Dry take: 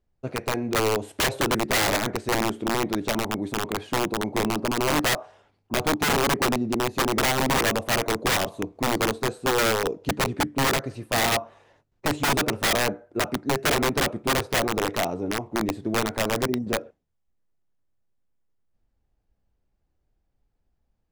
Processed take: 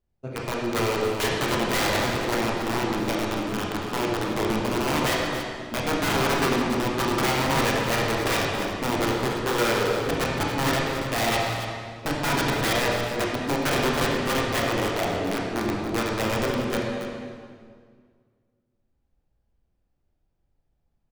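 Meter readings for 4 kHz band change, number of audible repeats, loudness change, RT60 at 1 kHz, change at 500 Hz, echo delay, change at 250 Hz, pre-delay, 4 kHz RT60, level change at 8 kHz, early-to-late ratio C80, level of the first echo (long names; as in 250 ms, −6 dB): −1.0 dB, 1, −0.5 dB, 1.9 s, +0.5 dB, 281 ms, +0.5 dB, 16 ms, 1.5 s, −3.5 dB, 1.0 dB, −10.5 dB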